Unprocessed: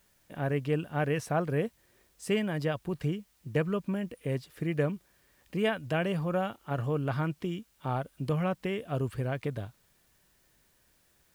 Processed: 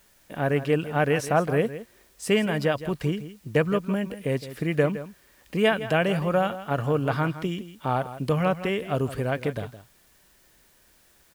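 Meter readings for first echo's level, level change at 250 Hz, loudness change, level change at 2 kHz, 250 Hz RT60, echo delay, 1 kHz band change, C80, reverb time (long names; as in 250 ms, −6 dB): −13.5 dB, +5.5 dB, +6.5 dB, +8.0 dB, no reverb audible, 164 ms, +8.0 dB, no reverb audible, no reverb audible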